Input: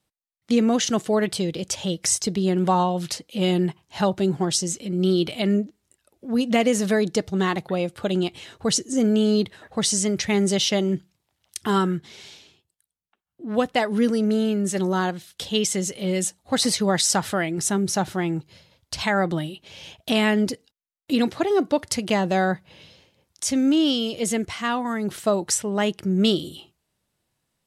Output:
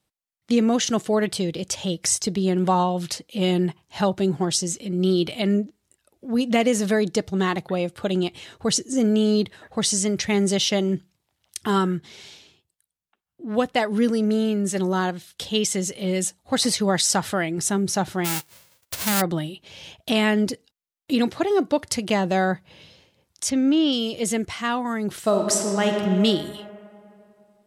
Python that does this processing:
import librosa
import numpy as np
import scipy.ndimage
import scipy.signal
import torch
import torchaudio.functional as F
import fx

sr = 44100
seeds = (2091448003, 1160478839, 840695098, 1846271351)

y = fx.envelope_flatten(x, sr, power=0.1, at=(18.24, 19.2), fade=0.02)
y = fx.lowpass(y, sr, hz=4400.0, slope=12, at=(23.49, 23.91), fade=0.02)
y = fx.reverb_throw(y, sr, start_s=25.18, length_s=0.77, rt60_s=2.7, drr_db=2.5)